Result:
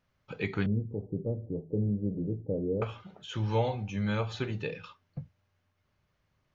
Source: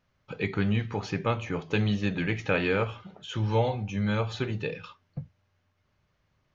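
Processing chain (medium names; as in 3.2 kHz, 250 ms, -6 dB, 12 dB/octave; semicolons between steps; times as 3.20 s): 0.66–2.82 s: steep low-pass 540 Hz 36 dB/octave; trim -3 dB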